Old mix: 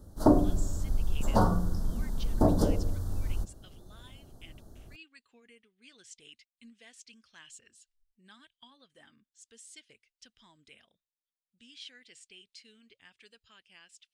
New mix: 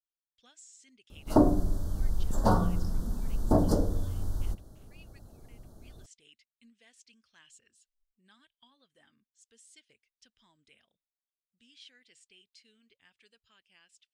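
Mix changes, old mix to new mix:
speech -6.5 dB; background: entry +1.10 s

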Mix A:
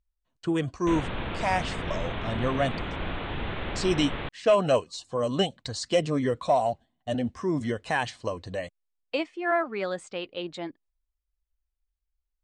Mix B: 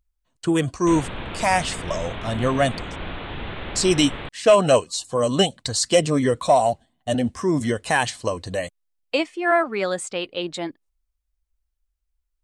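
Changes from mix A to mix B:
speech +6.0 dB; master: remove air absorption 96 m

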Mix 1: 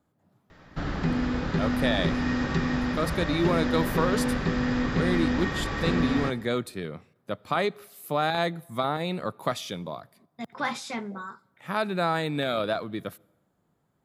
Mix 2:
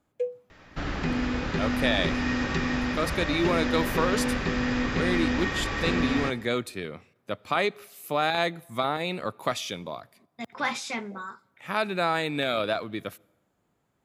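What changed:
first sound: unmuted; master: add fifteen-band EQ 160 Hz -5 dB, 2500 Hz +6 dB, 6300 Hz +4 dB

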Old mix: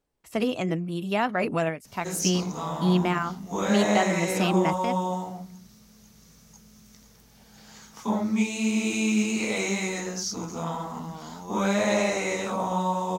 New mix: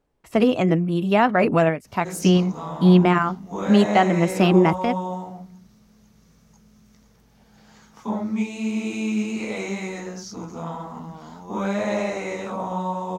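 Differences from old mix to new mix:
speech +8.5 dB; master: add high shelf 3300 Hz -11 dB

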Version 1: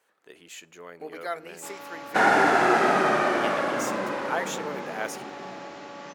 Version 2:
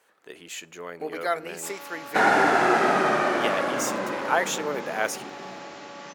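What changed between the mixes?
speech +6.0 dB; first sound: add tilt +1.5 dB/oct

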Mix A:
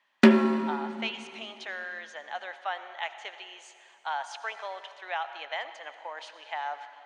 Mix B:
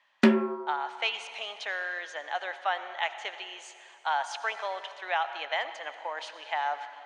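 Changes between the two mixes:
speech +4.0 dB; background: send off

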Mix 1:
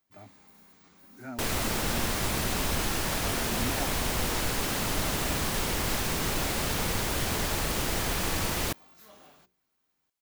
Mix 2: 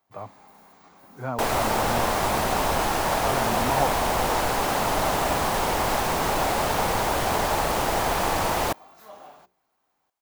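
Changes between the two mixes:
speech: remove fixed phaser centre 720 Hz, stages 8; master: add bell 790 Hz +14 dB 1.6 oct

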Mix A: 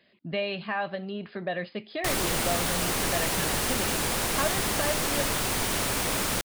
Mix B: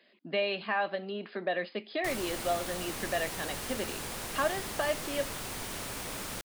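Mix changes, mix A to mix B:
speech: add HPF 230 Hz 24 dB/oct; background -11.0 dB

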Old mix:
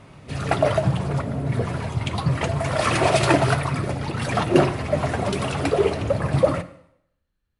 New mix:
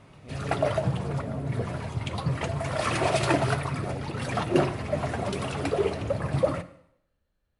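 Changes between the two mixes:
speech: add bell 620 Hz +10 dB 0.74 oct; background -6.0 dB

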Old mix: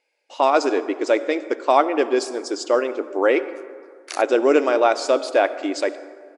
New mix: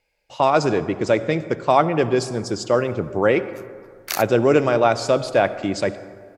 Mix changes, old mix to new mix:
background +6.5 dB; master: remove brick-wall FIR band-pass 250–11000 Hz

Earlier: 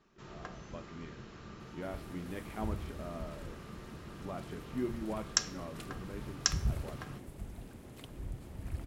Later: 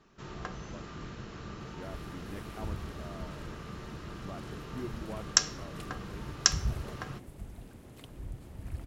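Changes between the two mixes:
first sound +7.0 dB; reverb: off

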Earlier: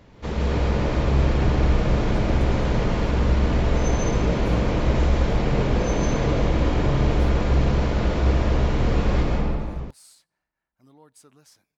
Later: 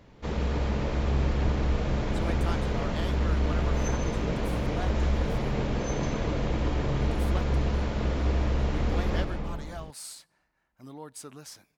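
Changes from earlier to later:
speech +9.5 dB; background: send -10.5 dB

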